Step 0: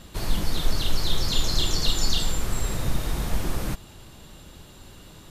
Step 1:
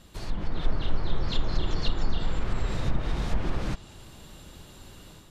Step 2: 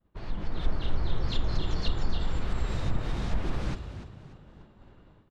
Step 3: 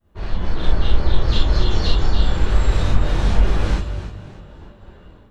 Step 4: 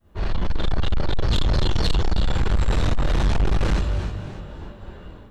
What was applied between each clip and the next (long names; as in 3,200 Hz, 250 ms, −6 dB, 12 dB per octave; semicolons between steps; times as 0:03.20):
treble cut that deepens with the level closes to 1,600 Hz, closed at −15.5 dBFS; automatic gain control gain up to 6.5 dB; level −7.5 dB
downward expander −42 dBFS; low-pass that shuts in the quiet parts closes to 1,400 Hz, open at −20.5 dBFS; echo with shifted repeats 293 ms, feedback 35%, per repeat +48 Hz, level −12 dB; level −2.5 dB
reverb whose tail is shaped and stops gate 90 ms flat, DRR −7 dB; level +3.5 dB
soft clipping −19 dBFS, distortion −6 dB; level +4 dB